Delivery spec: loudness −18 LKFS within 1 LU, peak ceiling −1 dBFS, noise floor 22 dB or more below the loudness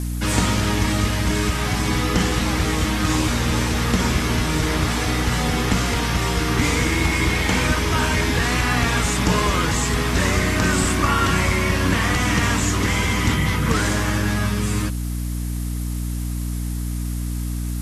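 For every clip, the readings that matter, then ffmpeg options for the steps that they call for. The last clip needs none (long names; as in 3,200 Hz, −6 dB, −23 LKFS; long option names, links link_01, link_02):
mains hum 60 Hz; hum harmonics up to 300 Hz; level of the hum −22 dBFS; background noise floor −25 dBFS; target noise floor −43 dBFS; integrated loudness −20.5 LKFS; sample peak −4.0 dBFS; target loudness −18.0 LKFS
→ -af "bandreject=frequency=60:width_type=h:width=6,bandreject=frequency=120:width_type=h:width=6,bandreject=frequency=180:width_type=h:width=6,bandreject=frequency=240:width_type=h:width=6,bandreject=frequency=300:width_type=h:width=6"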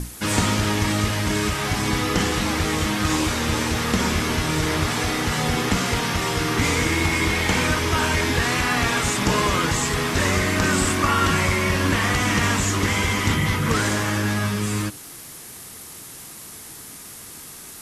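mains hum none found; background noise floor −40 dBFS; target noise floor −43 dBFS
→ -af "afftdn=noise_reduction=6:noise_floor=-40"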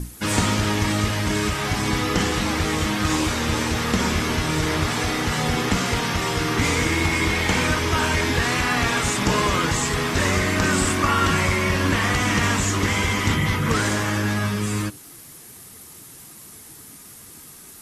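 background noise floor −43 dBFS; integrated loudness −21.0 LKFS; sample peak −6.5 dBFS; target loudness −18.0 LKFS
→ -af "volume=3dB"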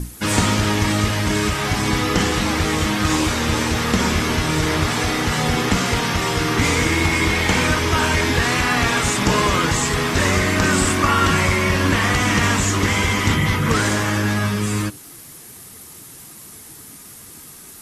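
integrated loudness −18.0 LKFS; sample peak −3.5 dBFS; background noise floor −40 dBFS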